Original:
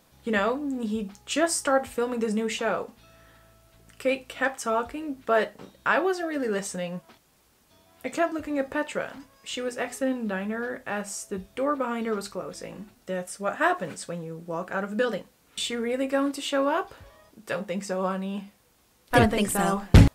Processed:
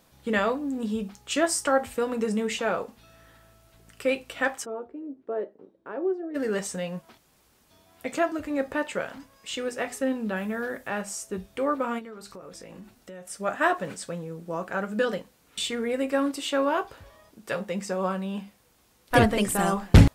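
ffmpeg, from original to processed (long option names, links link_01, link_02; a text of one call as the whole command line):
ffmpeg -i in.wav -filter_complex "[0:a]asplit=3[link_01][link_02][link_03];[link_01]afade=type=out:start_time=4.64:duration=0.02[link_04];[link_02]bandpass=frequency=370:width_type=q:width=2.8,afade=type=in:start_time=4.64:duration=0.02,afade=type=out:start_time=6.34:duration=0.02[link_05];[link_03]afade=type=in:start_time=6.34:duration=0.02[link_06];[link_04][link_05][link_06]amix=inputs=3:normalize=0,asettb=1/sr,asplit=3[link_07][link_08][link_09];[link_07]atrim=end=10.364[link_10];[link_08]atrim=start=10.36:end=10.88,asetpts=PTS-STARTPTS,afade=type=in:duration=0.004:curve=qsin,afade=type=out:start_time=0.516:duration=0.004:curve=qsin,highshelf=frequency=9000:gain=11[link_11];[link_09]atrim=start=10.876[link_12];[link_10][link_11]acrossfade=duration=0.004:curve1=hsin:curve2=qsin[link_13];[link_13][link_12]acrossfade=duration=0.004:curve1=qsin:curve2=hsin,asplit=3[link_14][link_15][link_16];[link_14]afade=type=out:start_time=11.98:duration=0.02[link_17];[link_15]acompressor=threshold=-40dB:ratio=5:attack=3.2:release=140:knee=1:detection=peak,afade=type=in:start_time=11.98:duration=0.02,afade=type=out:start_time=13.29:duration=0.02[link_18];[link_16]afade=type=in:start_time=13.29:duration=0.02[link_19];[link_17][link_18][link_19]amix=inputs=3:normalize=0" out.wav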